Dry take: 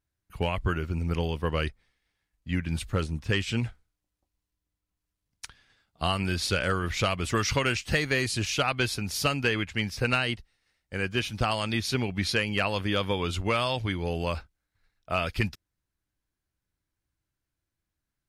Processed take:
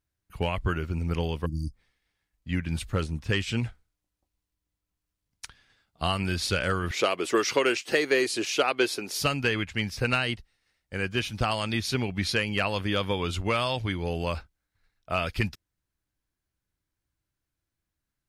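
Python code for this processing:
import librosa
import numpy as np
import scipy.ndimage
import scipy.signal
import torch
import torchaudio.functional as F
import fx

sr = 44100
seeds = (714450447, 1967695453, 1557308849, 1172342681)

y = fx.spec_erase(x, sr, start_s=1.46, length_s=0.27, low_hz=330.0, high_hz=4500.0)
y = fx.highpass_res(y, sr, hz=370.0, q=2.5, at=(6.91, 9.2))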